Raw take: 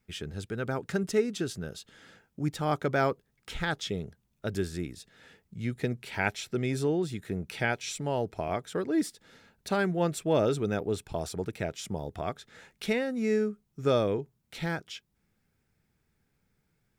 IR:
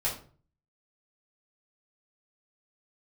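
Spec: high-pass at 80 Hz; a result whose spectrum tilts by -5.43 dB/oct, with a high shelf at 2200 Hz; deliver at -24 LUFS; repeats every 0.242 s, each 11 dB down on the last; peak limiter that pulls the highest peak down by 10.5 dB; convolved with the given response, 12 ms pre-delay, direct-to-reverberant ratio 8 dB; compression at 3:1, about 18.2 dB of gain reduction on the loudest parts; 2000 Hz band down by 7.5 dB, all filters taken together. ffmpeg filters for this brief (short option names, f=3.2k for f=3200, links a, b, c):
-filter_complex "[0:a]highpass=80,equalizer=f=2k:t=o:g=-7.5,highshelf=f=2.2k:g=-5.5,acompressor=threshold=-47dB:ratio=3,alimiter=level_in=16dB:limit=-24dB:level=0:latency=1,volume=-16dB,aecho=1:1:242|484|726:0.282|0.0789|0.0221,asplit=2[a][b];[1:a]atrim=start_sample=2205,adelay=12[c];[b][c]afir=irnorm=-1:irlink=0,volume=-15dB[d];[a][d]amix=inputs=2:normalize=0,volume=26dB"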